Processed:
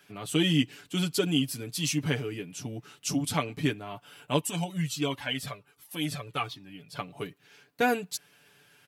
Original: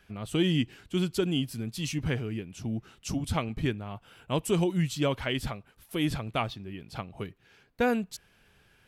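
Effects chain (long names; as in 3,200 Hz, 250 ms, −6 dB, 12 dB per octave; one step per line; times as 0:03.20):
high-pass filter 160 Hz 12 dB per octave
high-shelf EQ 4,000 Hz +7.5 dB
comb filter 6.9 ms, depth 73%
0:04.41–0:06.99: flanger whose copies keep moving one way falling 1.4 Hz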